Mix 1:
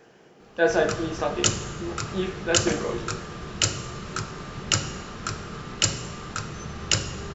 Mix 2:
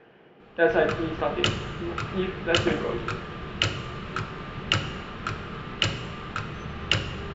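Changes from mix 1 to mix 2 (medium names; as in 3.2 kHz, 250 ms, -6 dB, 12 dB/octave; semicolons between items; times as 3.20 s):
speech: add distance through air 140 m; master: add resonant high shelf 4.4 kHz -13.5 dB, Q 1.5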